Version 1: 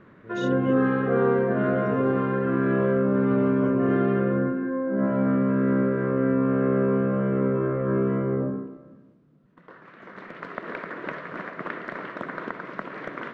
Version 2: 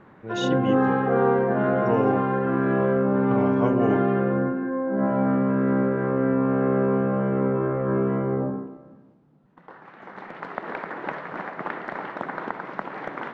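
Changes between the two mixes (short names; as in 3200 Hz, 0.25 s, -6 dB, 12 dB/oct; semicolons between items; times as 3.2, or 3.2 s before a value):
speech +9.5 dB; master: add bell 820 Hz +14.5 dB 0.32 oct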